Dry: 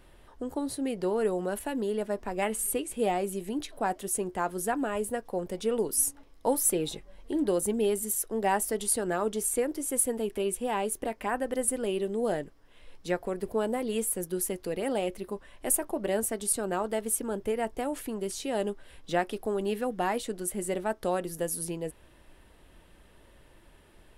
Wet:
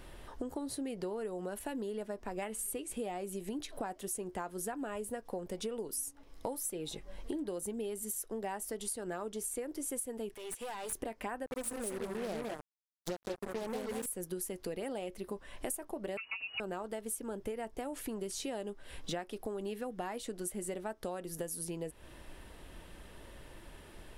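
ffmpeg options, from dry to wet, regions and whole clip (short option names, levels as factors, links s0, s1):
-filter_complex "[0:a]asettb=1/sr,asplit=3[s0][s1][s2];[s0]atrim=end=10.344[s3];[s1]atrim=start=10.34:end=10.93,asetpts=PTS-STARTPTS,afade=t=in:d=0.004:c=qsin,afade=t=out:st=0.586:d=0.004:c=qsin,highpass=f=1100:p=1,acompressor=threshold=0.0126:ratio=10:attack=3.2:release=140:knee=1:detection=peak,aeval=exprs='clip(val(0),-1,0.00531)':c=same[s4];[s2]atrim=start=10.926[s5];[s3][s4]acrossfade=d=0.004:c1=hsin:c2=qsin[s6];[s6][s5]acrossfade=d=0.004:c1=qsin:c2=hsin,asettb=1/sr,asplit=3[s7][s8][s9];[s7]atrim=end=11.464[s10];[s8]atrim=start=11.46:end=14.06,asetpts=PTS-STARTPTS,afade=t=in:d=0.004:c=qsin,afade=t=out:st=2.596:d=0.004:c=qsin,asuperstop=centerf=2100:order=8:qfactor=0.75,aecho=1:1:180|190|199:0.15|0.473|0.531,atrim=end_sample=114660,acrusher=bits=4:mix=0:aa=0.5[s11];[s9]atrim=start=14.056[s12];[s10][s11]acrossfade=d=0.004:c1=hsin:c2=qsin[s13];[s13][s12]acrossfade=d=0.004:c1=qsin:c2=hsin,asettb=1/sr,asplit=3[s14][s15][s16];[s14]atrim=end=16.174[s17];[s15]atrim=start=16.17:end=16.6,asetpts=PTS-STARTPTS,afade=t=in:d=0.004:c=qsin,afade=t=out:st=0.426:d=0.004:c=qsin,aecho=1:1:5.7:0.73,atrim=end_sample=18963,lowpass=f=2500:t=q:w=0.5098,lowpass=f=2500:t=q:w=0.6013,lowpass=f=2500:t=q:w=0.9,lowpass=f=2500:t=q:w=2.563,afreqshift=-2900[s18];[s16]atrim=start=16.596[s19];[s17][s18]acrossfade=d=0.004:c1=hsin:c2=qsin[s20];[s20][s19]acrossfade=d=0.004:c1=qsin:c2=hsin,equalizer=f=5800:w=1.5:g=2,acompressor=threshold=0.00891:ratio=10,volume=1.78"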